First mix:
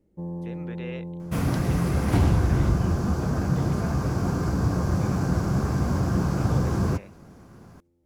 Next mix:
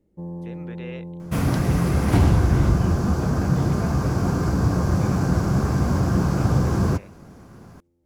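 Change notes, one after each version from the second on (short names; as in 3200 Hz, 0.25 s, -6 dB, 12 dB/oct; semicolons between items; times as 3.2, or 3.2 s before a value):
second sound +3.5 dB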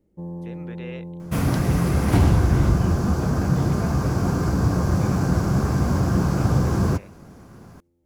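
master: add high shelf 10000 Hz +3 dB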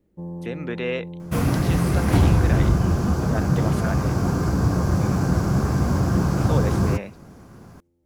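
speech +11.5 dB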